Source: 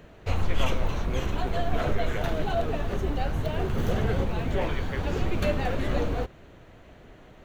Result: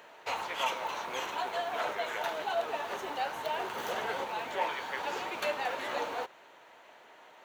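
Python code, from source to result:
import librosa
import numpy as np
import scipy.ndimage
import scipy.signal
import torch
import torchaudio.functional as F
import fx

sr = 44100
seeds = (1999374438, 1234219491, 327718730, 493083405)

p1 = scipy.signal.sosfilt(scipy.signal.butter(2, 710.0, 'highpass', fs=sr, output='sos'), x)
p2 = fx.peak_eq(p1, sr, hz=910.0, db=9.5, octaves=0.2)
p3 = fx.rider(p2, sr, range_db=10, speed_s=0.5)
p4 = p2 + (p3 * 10.0 ** (3.0 / 20.0))
y = p4 * 10.0 ** (-7.5 / 20.0)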